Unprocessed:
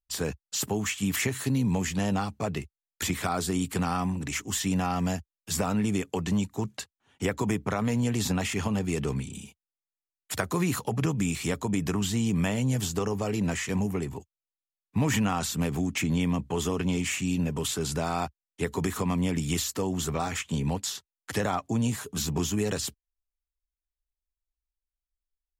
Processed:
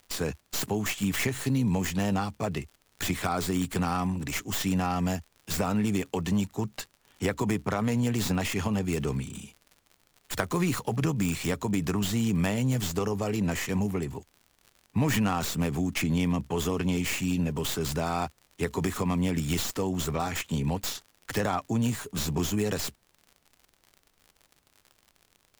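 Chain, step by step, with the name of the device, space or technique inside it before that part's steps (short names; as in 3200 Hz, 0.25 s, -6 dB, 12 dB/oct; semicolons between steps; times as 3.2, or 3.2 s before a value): record under a worn stylus (tracing distortion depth 0.12 ms; crackle 77/s -41 dBFS; pink noise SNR 42 dB)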